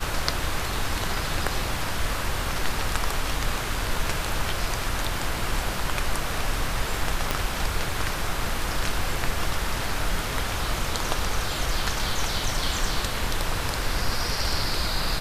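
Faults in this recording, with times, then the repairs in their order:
0:07.31: click −7 dBFS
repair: click removal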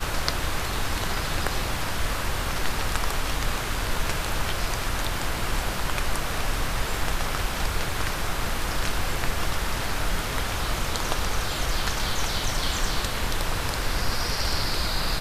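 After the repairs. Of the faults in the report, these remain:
0:07.31: click

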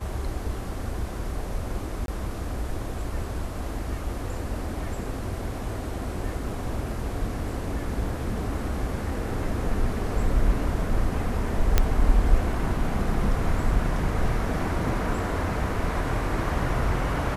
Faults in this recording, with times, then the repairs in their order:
0:02.06–0:02.08: drop-out 22 ms
0:11.78: click −5 dBFS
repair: click removal
repair the gap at 0:02.06, 22 ms

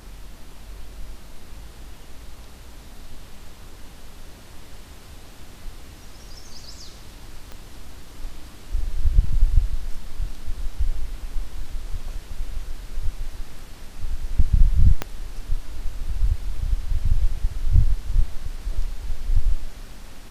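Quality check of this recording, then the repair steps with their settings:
0:07.52: click −22 dBFS
0:15.02: click −9 dBFS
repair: click removal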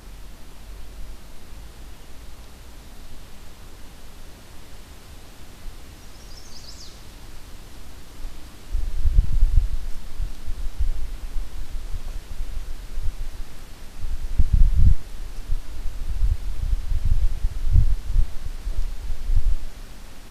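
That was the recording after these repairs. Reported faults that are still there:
0:07.52: click
0:15.02: click

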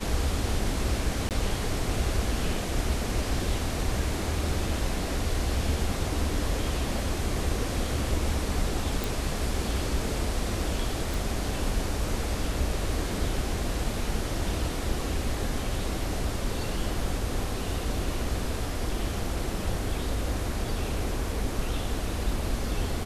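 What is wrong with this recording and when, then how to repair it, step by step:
0:01.29–0:01.31: drop-out 18 ms
0:09.04: click
0:11.14: click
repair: click removal
repair the gap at 0:01.29, 18 ms

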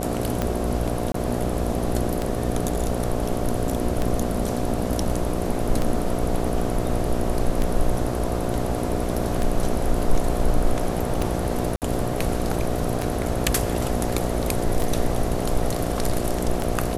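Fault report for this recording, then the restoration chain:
mains buzz 60 Hz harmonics 12 −27 dBFS
scratch tick 33 1/3 rpm −10 dBFS
0:01.12–0:01.14: drop-out 23 ms
0:11.76–0:11.82: drop-out 58 ms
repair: click removal
hum removal 60 Hz, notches 12
repair the gap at 0:01.12, 23 ms
repair the gap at 0:11.76, 58 ms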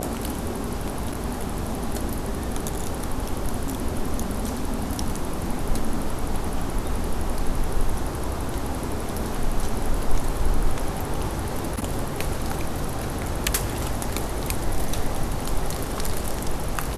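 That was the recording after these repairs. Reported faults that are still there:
none of them is left

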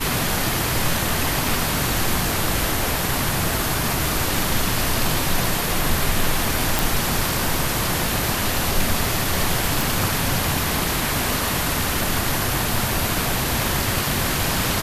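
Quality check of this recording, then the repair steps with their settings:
0:06.79: click
0:09.81: click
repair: click removal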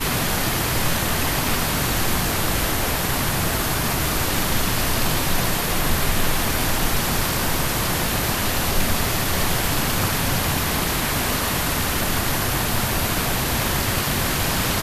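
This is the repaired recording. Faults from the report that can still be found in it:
none of them is left

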